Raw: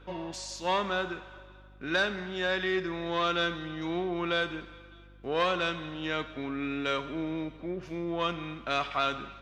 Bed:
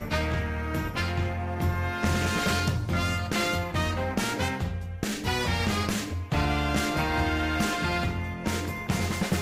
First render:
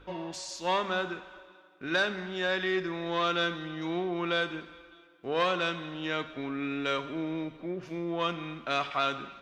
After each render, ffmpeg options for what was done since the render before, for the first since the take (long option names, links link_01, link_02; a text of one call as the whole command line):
ffmpeg -i in.wav -af "bandreject=frequency=50:width_type=h:width=4,bandreject=frequency=100:width_type=h:width=4,bandreject=frequency=150:width_type=h:width=4,bandreject=frequency=200:width_type=h:width=4,bandreject=frequency=250:width_type=h:width=4" out.wav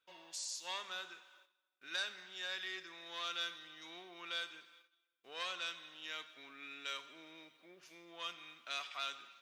ffmpeg -i in.wav -af "agate=range=-13dB:threshold=-51dB:ratio=16:detection=peak,aderivative" out.wav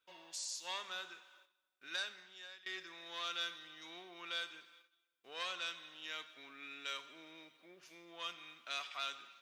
ffmpeg -i in.wav -filter_complex "[0:a]asplit=2[link_01][link_02];[link_01]atrim=end=2.66,asetpts=PTS-STARTPTS,afade=type=out:start_time=1.88:duration=0.78:silence=0.0944061[link_03];[link_02]atrim=start=2.66,asetpts=PTS-STARTPTS,afade=type=in:duration=0.004:curve=hsin:silence=0.0944061[link_04];[link_03][link_04]concat=n=2:v=0:a=1" out.wav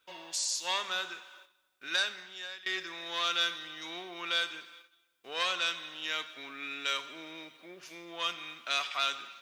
ffmpeg -i in.wav -af "volume=10.5dB" out.wav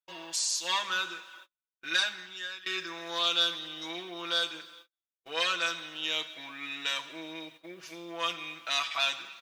ffmpeg -i in.wav -af "agate=range=-33dB:threshold=-55dB:ratio=16:detection=peak,aecho=1:1:6.1:0.94" out.wav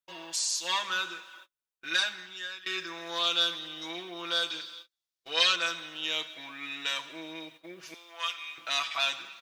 ffmpeg -i in.wav -filter_complex "[0:a]asettb=1/sr,asplit=3[link_01][link_02][link_03];[link_01]atrim=end=4.504[link_04];[link_02]atrim=start=4.5:end=5.56,asetpts=PTS-STARTPTS,afade=type=in:duration=0.004:curve=qsin,afade=type=out:start_time=1.056:duration=0.004:curve=qsin,equalizer=frequency=4500:width_type=o:width=1.2:gain=10[link_05];[link_03]atrim=start=5.556[link_06];[link_04][link_05]acrossfade=duration=0.004:curve1=hsin:curve2=qsin[link_07];[link_07][link_06]acrossfade=duration=0.004:curve1=qsin:curve2=hsin,asettb=1/sr,asplit=3[link_08][link_09][link_10];[link_08]atrim=end=7.944[link_11];[link_09]atrim=start=7.94:end=8.58,asetpts=PTS-STARTPTS,afade=type=in:duration=0.004:curve=qsin,afade=type=out:start_time=0.636:duration=0.004:curve=qsin,highpass=1100[link_12];[link_10]atrim=start=8.576[link_13];[link_11][link_12]acrossfade=duration=0.004:curve1=hsin:curve2=qsin[link_14];[link_14][link_13]acrossfade=duration=0.004:curve1=qsin:curve2=hsin" out.wav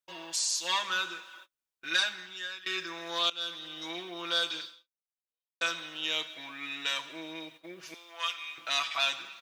ffmpeg -i in.wav -filter_complex "[0:a]asplit=3[link_01][link_02][link_03];[link_01]atrim=end=3.3,asetpts=PTS-STARTPTS,afade=type=out:start_time=3.296:duration=0.004:curve=hsin:silence=0.1[link_04];[link_02]atrim=start=3.3:end=5.61,asetpts=PTS-STARTPTS,afade=type=in:duration=0.7:curve=qsin:silence=0.1,afade=type=out:start_time=1.35:duration=0.96:curve=exp[link_05];[link_03]atrim=start=5.61,asetpts=PTS-STARTPTS,afade=type=in:duration=0.004:curve=hsin[link_06];[link_04][link_05][link_06]concat=n=3:v=0:a=1" out.wav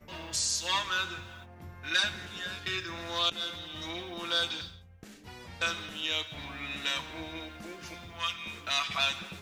ffmpeg -i in.wav -i bed.wav -filter_complex "[1:a]volume=-20dB[link_01];[0:a][link_01]amix=inputs=2:normalize=0" out.wav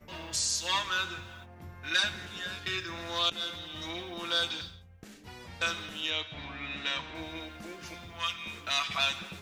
ffmpeg -i in.wav -filter_complex "[0:a]asettb=1/sr,asplit=3[link_01][link_02][link_03];[link_01]atrim=end=6.104[link_04];[link_02]atrim=start=6.1:end=7.15,asetpts=PTS-STARTPTS,afade=type=in:duration=0.004:curve=qsin,afade=type=out:start_time=1.046:duration=0.004:curve=qsin,lowpass=4500[link_05];[link_03]atrim=start=7.146[link_06];[link_04][link_05]acrossfade=duration=0.004:curve1=hsin:curve2=qsin[link_07];[link_07][link_06]acrossfade=duration=0.004:curve1=qsin:curve2=hsin" out.wav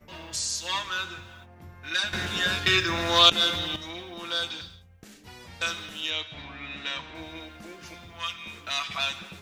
ffmpeg -i in.wav -filter_complex "[0:a]asettb=1/sr,asplit=3[link_01][link_02][link_03];[link_01]atrim=end=4.704[link_04];[link_02]atrim=start=4.7:end=6.42,asetpts=PTS-STARTPTS,afade=type=in:duration=0.004:curve=qsin,afade=type=out:start_time=1.716:duration=0.004:curve=qsin,highshelf=frequency=3200:gain=4.5[link_05];[link_03]atrim=start=6.416[link_06];[link_04][link_05]acrossfade=duration=0.004:curve1=hsin:curve2=qsin[link_07];[link_07][link_06]acrossfade=duration=0.004:curve1=qsin:curve2=hsin,asplit=3[link_08][link_09][link_10];[link_08]atrim=end=2.132[link_11];[link_09]atrim=start=2.128:end=3.762,asetpts=PTS-STARTPTS,volume=12dB[link_12];[link_10]atrim=start=3.758[link_13];[link_11][link_12]acrossfade=duration=0.004:curve1=hsin:curve2=hsin[link_14];[link_14][link_13]acrossfade=duration=0.004:curve1=hsin:curve2=hsin" out.wav